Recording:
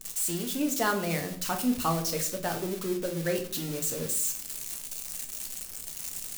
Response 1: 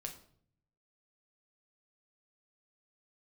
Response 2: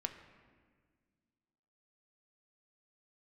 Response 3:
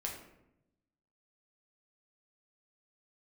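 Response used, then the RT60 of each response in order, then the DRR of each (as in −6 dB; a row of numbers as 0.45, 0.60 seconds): 1; 0.60, 1.7, 0.85 seconds; 3.0, 5.0, −1.5 decibels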